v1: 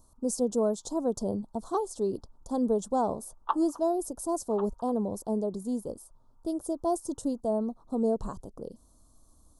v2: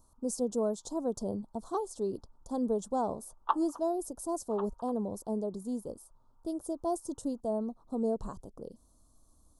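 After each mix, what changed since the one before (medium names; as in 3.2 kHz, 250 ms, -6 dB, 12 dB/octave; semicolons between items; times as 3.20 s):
speech -4.0 dB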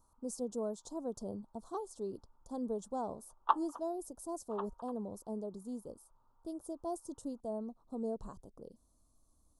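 speech -7.0 dB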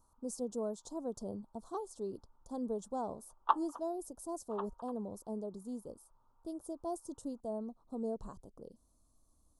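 no change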